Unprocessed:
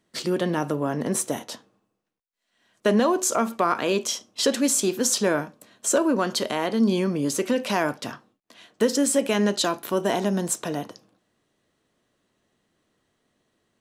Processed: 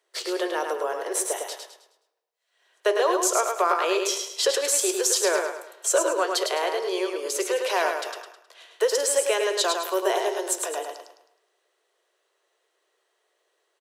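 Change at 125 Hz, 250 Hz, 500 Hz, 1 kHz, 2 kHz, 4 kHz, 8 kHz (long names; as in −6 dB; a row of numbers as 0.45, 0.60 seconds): below −40 dB, −11.5 dB, +1.0 dB, +1.5 dB, +1.5 dB, +1.5 dB, +1.5 dB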